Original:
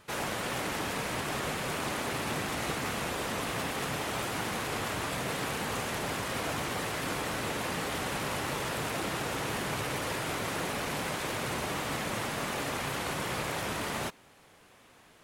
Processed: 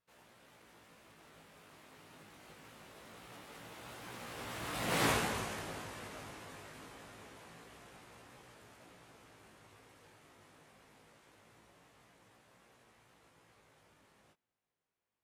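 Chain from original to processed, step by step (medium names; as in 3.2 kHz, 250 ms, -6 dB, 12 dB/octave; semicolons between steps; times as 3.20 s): Doppler pass-by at 5.06 s, 25 m/s, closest 2.9 m; chorus 0.24 Hz, delay 17 ms, depth 2.3 ms; trim +7 dB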